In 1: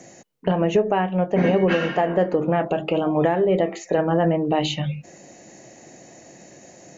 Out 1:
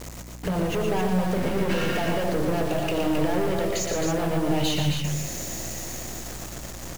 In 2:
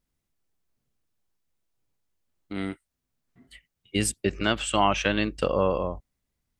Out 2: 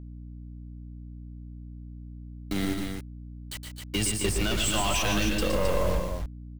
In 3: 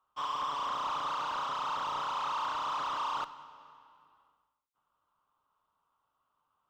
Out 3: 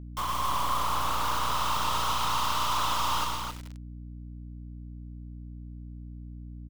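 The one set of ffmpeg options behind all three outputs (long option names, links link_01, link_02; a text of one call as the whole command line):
ffmpeg -i in.wav -filter_complex "[0:a]aeval=exprs='if(lt(val(0),0),0.708*val(0),val(0))':channel_layout=same,acrossover=split=110|3600[link_01][link_02][link_03];[link_03]dynaudnorm=framelen=230:gausssize=13:maxgain=12dB[link_04];[link_01][link_02][link_04]amix=inputs=3:normalize=0,alimiter=limit=-14dB:level=0:latency=1,highshelf=frequency=8300:gain=-3,asoftclip=type=tanh:threshold=-25dB,acrusher=bits=6:mix=0:aa=0.000001,acompressor=threshold=-34dB:ratio=3,lowshelf=frequency=120:gain=9.5,asplit=2[link_05][link_06];[link_06]aecho=0:1:117|145|247|266:0.473|0.299|0.141|0.531[link_07];[link_05][link_07]amix=inputs=2:normalize=0,aeval=exprs='val(0)+0.00501*(sin(2*PI*60*n/s)+sin(2*PI*2*60*n/s)/2+sin(2*PI*3*60*n/s)/3+sin(2*PI*4*60*n/s)/4+sin(2*PI*5*60*n/s)/5)':channel_layout=same,volume=6dB" out.wav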